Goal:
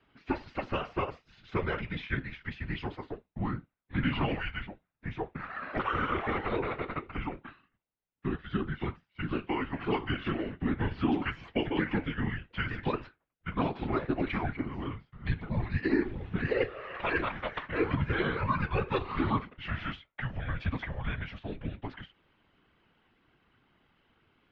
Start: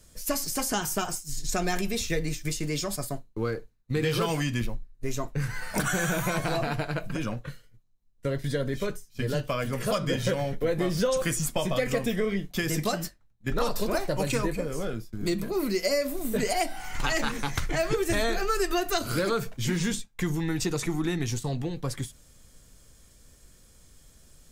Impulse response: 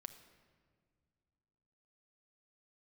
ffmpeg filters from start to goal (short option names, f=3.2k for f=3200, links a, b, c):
-af "highpass=f=290:t=q:w=0.5412,highpass=f=290:t=q:w=1.307,lowpass=f=3.2k:t=q:w=0.5176,lowpass=f=3.2k:t=q:w=0.7071,lowpass=f=3.2k:t=q:w=1.932,afreqshift=-260,afftfilt=real='hypot(re,im)*cos(2*PI*random(0))':imag='hypot(re,im)*sin(2*PI*random(1))':win_size=512:overlap=0.75,adynamicequalizer=threshold=0.00282:dfrequency=190:dqfactor=2.5:tfrequency=190:tqfactor=2.5:attack=5:release=100:ratio=0.375:range=2:mode=cutabove:tftype=bell,volume=5dB"